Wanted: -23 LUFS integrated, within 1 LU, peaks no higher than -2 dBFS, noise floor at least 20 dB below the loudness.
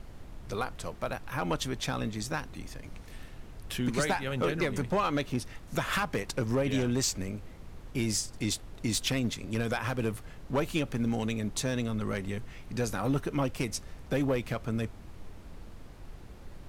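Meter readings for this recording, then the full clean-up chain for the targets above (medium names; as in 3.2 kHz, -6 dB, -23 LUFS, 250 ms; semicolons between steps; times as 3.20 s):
clipped samples 0.4%; clipping level -21.0 dBFS; noise floor -48 dBFS; noise floor target -52 dBFS; loudness -32.0 LUFS; peak level -21.0 dBFS; loudness target -23.0 LUFS
-> clip repair -21 dBFS; noise print and reduce 6 dB; trim +9 dB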